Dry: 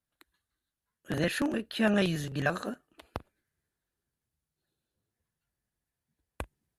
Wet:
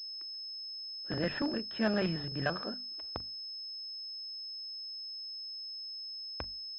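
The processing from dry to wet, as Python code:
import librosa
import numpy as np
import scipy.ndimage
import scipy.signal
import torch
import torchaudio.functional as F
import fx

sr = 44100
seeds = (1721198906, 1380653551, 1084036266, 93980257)

y = fx.hum_notches(x, sr, base_hz=50, count=5)
y = fx.pwm(y, sr, carrier_hz=5200.0)
y = y * 10.0 ** (-3.5 / 20.0)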